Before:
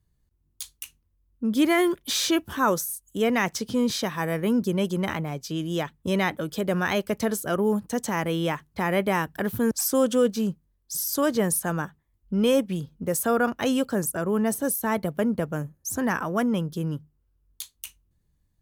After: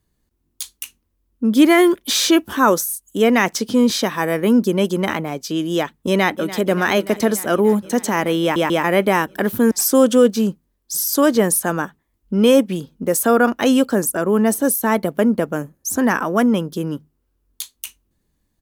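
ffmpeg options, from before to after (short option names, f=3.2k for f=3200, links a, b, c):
-filter_complex "[0:a]asplit=2[a][b];[b]afade=t=in:st=6.08:d=0.01,afade=t=out:st=6.65:d=0.01,aecho=0:1:290|580|870|1160|1450|1740|2030|2320|2610|2900|3190|3480:0.177828|0.142262|0.11381|0.0910479|0.0728383|0.0582707|0.0466165|0.0372932|0.0298346|0.0238677|0.0190941|0.0152753[c];[a][c]amix=inputs=2:normalize=0,asplit=4[d][e][f][g];[d]atrim=end=8.562[h];[e]atrim=start=8.418:end=8.562[i];[f]atrim=start=8.418:end=8.562[j];[g]atrim=start=8.838[k];[h][i]acrossfade=d=0.004:c1=hsin:c2=hsin[l];[l][j]acrossfade=d=0.004:c1=hsin:c2=hsin[m];[m][k]acrossfade=d=0.004:c1=hsin:c2=hsin,lowshelf=f=180:t=q:w=1.5:g=-7.5,volume=7.5dB"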